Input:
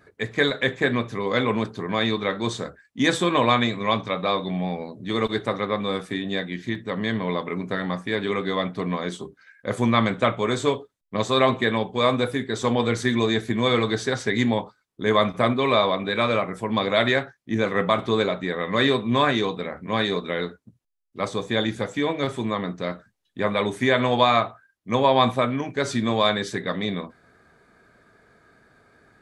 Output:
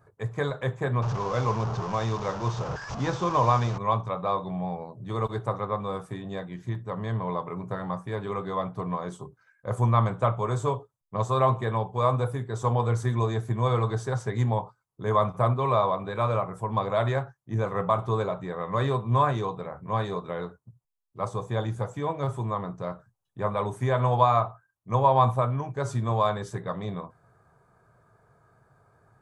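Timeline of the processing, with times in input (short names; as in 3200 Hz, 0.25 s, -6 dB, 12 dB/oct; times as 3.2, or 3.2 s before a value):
1.02–3.78 delta modulation 32 kbps, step -22 dBFS
whole clip: ten-band EQ 125 Hz +12 dB, 250 Hz -11 dB, 1000 Hz +8 dB, 2000 Hz -11 dB, 4000 Hz -11 dB; gain -4.5 dB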